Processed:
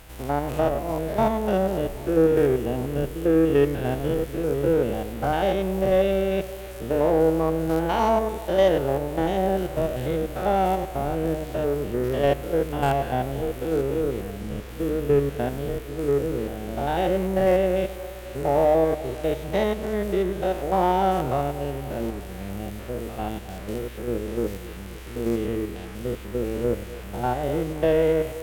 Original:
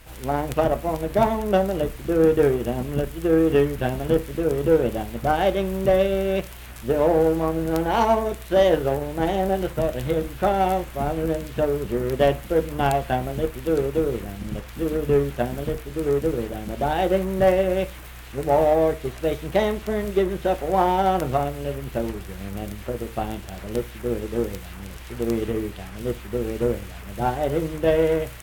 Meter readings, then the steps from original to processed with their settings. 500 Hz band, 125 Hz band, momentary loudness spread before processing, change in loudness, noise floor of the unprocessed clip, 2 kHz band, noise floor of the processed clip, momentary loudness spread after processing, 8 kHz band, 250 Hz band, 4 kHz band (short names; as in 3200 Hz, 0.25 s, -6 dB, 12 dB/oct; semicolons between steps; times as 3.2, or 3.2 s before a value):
-1.0 dB, -1.0 dB, 11 LU, -1.0 dB, -39 dBFS, -2.0 dB, -37 dBFS, 12 LU, -2.0 dB, -0.5 dB, -2.0 dB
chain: stepped spectrum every 0.1 s; on a send: band-limited delay 0.262 s, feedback 65%, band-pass 580 Hz, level -16 dB